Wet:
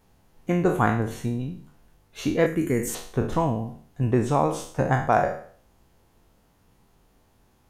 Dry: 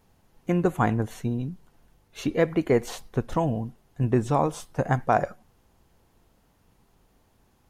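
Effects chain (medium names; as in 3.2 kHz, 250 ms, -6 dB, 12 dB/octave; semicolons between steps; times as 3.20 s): spectral sustain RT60 0.51 s; 2.46–2.95 s: FFT filter 280 Hz 0 dB, 730 Hz -15 dB, 1.8 kHz -2 dB, 2.9 kHz -7 dB, 4.2 kHz -11 dB, 7.6 kHz +11 dB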